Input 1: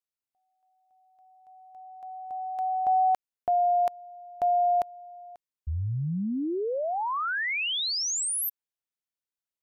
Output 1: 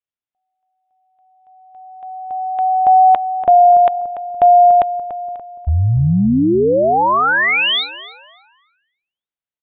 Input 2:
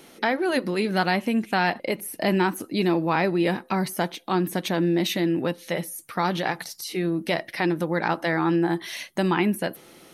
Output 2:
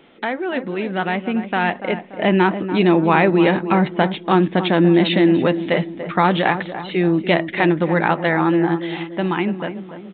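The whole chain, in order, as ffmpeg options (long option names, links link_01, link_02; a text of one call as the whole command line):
ffmpeg -i in.wav -filter_complex "[0:a]dynaudnorm=framelen=240:gausssize=17:maxgain=16dB,asplit=2[link_01][link_02];[link_02]adelay=289,lowpass=frequency=1300:poles=1,volume=-10dB,asplit=2[link_03][link_04];[link_04]adelay=289,lowpass=frequency=1300:poles=1,volume=0.5,asplit=2[link_05][link_06];[link_06]adelay=289,lowpass=frequency=1300:poles=1,volume=0.5,asplit=2[link_07][link_08];[link_08]adelay=289,lowpass=frequency=1300:poles=1,volume=0.5,asplit=2[link_09][link_10];[link_10]adelay=289,lowpass=frequency=1300:poles=1,volume=0.5[link_11];[link_03][link_05][link_07][link_09][link_11]amix=inputs=5:normalize=0[link_12];[link_01][link_12]amix=inputs=2:normalize=0,aresample=8000,aresample=44100" out.wav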